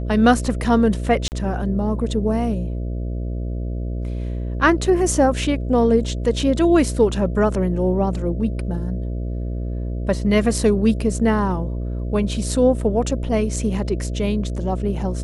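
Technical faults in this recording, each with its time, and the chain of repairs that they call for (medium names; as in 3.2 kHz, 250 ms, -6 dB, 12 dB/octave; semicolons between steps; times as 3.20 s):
buzz 60 Hz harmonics 11 -25 dBFS
1.28–1.32 s: dropout 39 ms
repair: de-hum 60 Hz, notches 11; interpolate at 1.28 s, 39 ms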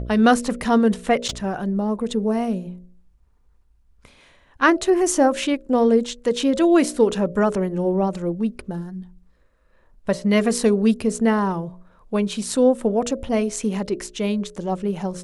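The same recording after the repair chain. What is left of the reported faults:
nothing left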